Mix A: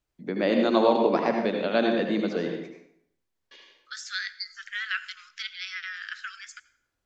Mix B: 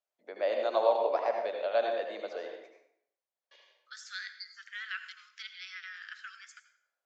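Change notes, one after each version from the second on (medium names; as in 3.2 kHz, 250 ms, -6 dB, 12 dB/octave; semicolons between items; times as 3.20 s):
second voice: send +7.5 dB; master: add ladder high-pass 530 Hz, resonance 55%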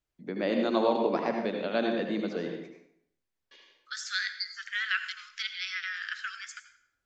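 first voice -5.0 dB; master: remove ladder high-pass 530 Hz, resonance 55%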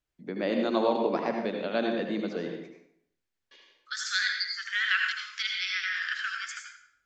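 second voice: send +11.5 dB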